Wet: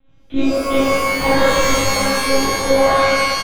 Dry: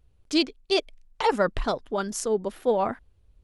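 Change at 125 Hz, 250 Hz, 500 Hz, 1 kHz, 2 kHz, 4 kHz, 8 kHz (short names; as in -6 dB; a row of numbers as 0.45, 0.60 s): +13.0, +10.0, +10.0, +11.5, +17.0, +10.5, +15.0 dB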